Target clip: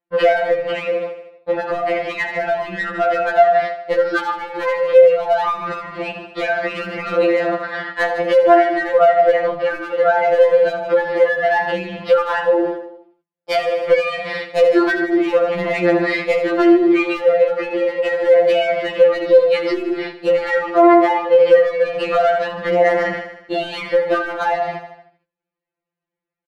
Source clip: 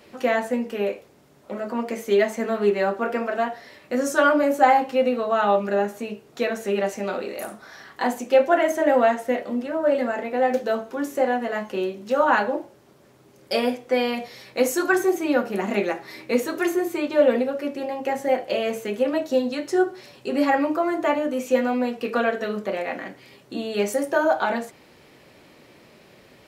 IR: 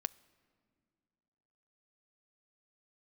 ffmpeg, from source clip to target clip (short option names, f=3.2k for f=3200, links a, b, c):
-af "bandreject=f=50:t=h:w=6,bandreject=f=100:t=h:w=6,bandreject=f=150:t=h:w=6,bandreject=f=200:t=h:w=6,bandreject=f=250:t=h:w=6,bandreject=f=300:t=h:w=6,bandreject=f=350:t=h:w=6,bandreject=f=400:t=h:w=6,bandreject=f=450:t=h:w=6,agate=range=-55dB:threshold=-43dB:ratio=16:detection=peak,lowshelf=f=480:g=-5,acompressor=threshold=-29dB:ratio=8,aresample=11025,asoftclip=type=tanh:threshold=-19dB,aresample=44100,adynamicsmooth=sensitivity=2:basefreq=2.3k,asoftclip=type=hard:threshold=-26.5dB,aecho=1:1:77|154|231|308|385|462:0.2|0.114|0.0648|0.037|0.0211|0.012,alimiter=level_in=33.5dB:limit=-1dB:release=50:level=0:latency=1,afftfilt=real='re*2.83*eq(mod(b,8),0)':imag='im*2.83*eq(mod(b,8),0)':win_size=2048:overlap=0.75,volume=-7dB"